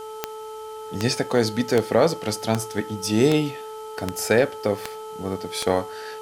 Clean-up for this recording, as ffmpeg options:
-af "adeclick=t=4,bandreject=f=435.3:t=h:w=4,bandreject=f=870.6:t=h:w=4,bandreject=f=1.3059k:t=h:w=4,bandreject=f=3.1k:w=30,agate=range=-21dB:threshold=-28dB"

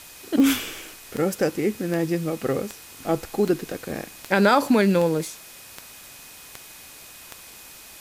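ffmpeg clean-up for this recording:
-af "adeclick=t=4,bandreject=f=2.5k:w=30,afftdn=nr=23:nf=-44"

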